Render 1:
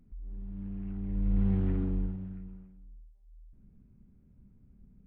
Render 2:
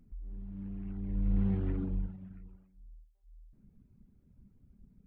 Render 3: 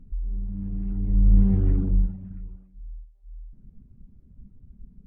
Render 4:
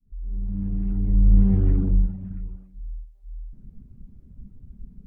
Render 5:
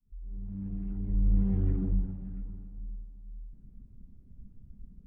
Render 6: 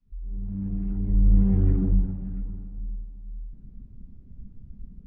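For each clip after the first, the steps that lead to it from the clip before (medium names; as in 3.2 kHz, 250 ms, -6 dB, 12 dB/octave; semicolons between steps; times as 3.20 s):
reverb removal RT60 0.82 s
tilt EQ -2.5 dB/octave; flange 1.7 Hz, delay 0.7 ms, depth 4.6 ms, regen -74%; trim +6.5 dB
fade-in on the opening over 0.55 s; in parallel at -3 dB: compression, threshold -27 dBFS, peak gain reduction 14.5 dB
reverberation RT60 2.9 s, pre-delay 35 ms, DRR 9 dB; trim -8 dB
distance through air 150 m; trim +7 dB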